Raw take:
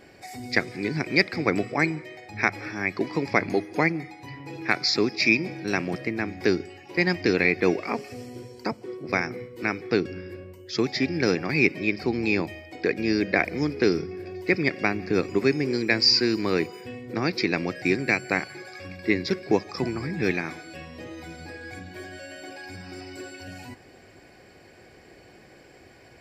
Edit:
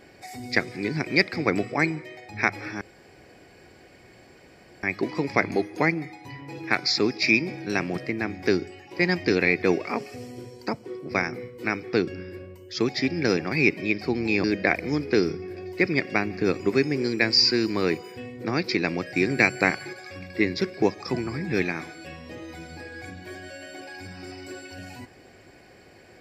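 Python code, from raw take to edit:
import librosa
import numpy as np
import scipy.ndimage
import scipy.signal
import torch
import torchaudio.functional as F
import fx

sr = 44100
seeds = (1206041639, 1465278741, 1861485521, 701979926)

y = fx.edit(x, sr, fx.insert_room_tone(at_s=2.81, length_s=2.02),
    fx.cut(start_s=12.42, length_s=0.71),
    fx.clip_gain(start_s=17.96, length_s=0.66, db=3.5), tone=tone)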